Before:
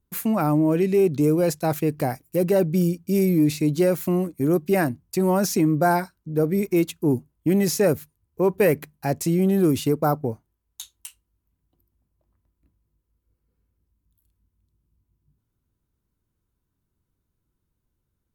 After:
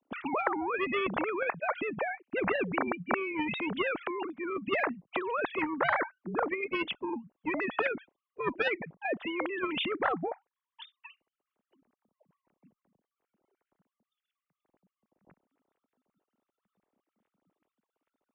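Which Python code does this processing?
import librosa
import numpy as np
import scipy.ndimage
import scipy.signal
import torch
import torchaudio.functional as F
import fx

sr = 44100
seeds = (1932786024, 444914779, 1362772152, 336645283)

y = fx.sine_speech(x, sr)
y = fx.cheby_harmonics(y, sr, harmonics=(3,), levels_db=(-19,), full_scale_db=-5.5)
y = fx.spectral_comp(y, sr, ratio=4.0)
y = y * librosa.db_to_amplitude(-7.5)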